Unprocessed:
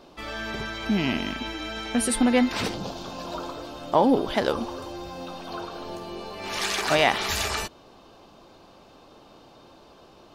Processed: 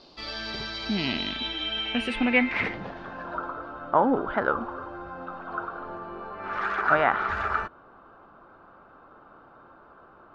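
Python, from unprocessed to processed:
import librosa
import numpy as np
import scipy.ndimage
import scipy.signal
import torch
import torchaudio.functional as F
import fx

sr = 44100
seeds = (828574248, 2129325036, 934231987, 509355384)

y = fx.filter_sweep_lowpass(x, sr, from_hz=4600.0, to_hz=1400.0, start_s=0.91, end_s=3.51, q=6.2)
y = y * librosa.db_to_amplitude(-4.5)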